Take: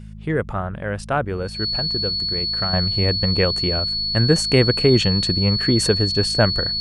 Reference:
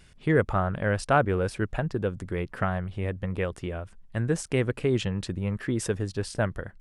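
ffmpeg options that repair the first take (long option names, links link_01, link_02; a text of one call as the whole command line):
ffmpeg -i in.wav -af "bandreject=frequency=52.9:width_type=h:width=4,bandreject=frequency=105.8:width_type=h:width=4,bandreject=frequency=158.7:width_type=h:width=4,bandreject=frequency=211.6:width_type=h:width=4,bandreject=frequency=4400:width=30,asetnsamples=nb_out_samples=441:pad=0,asendcmd='2.73 volume volume -9.5dB',volume=0dB" out.wav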